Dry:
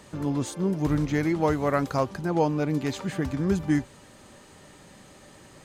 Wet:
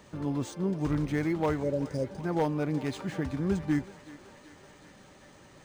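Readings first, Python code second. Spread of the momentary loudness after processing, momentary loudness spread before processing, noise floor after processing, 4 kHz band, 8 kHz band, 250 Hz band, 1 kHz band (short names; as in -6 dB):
6 LU, 5 LU, -55 dBFS, -5.5 dB, -7.5 dB, -4.0 dB, -7.0 dB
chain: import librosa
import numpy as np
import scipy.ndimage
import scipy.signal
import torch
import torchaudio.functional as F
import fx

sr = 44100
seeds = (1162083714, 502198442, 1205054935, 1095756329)

p1 = fx.spec_repair(x, sr, seeds[0], start_s=1.66, length_s=0.49, low_hz=660.0, high_hz=4600.0, source='after')
p2 = 10.0 ** (-15.0 / 20.0) * (np.abs((p1 / 10.0 ** (-15.0 / 20.0) + 3.0) % 4.0 - 2.0) - 1.0)
p3 = p2 + fx.echo_thinned(p2, sr, ms=378, feedback_pct=78, hz=440.0, wet_db=-16.0, dry=0)
p4 = np.interp(np.arange(len(p3)), np.arange(len(p3))[::3], p3[::3])
y = p4 * 10.0 ** (-4.0 / 20.0)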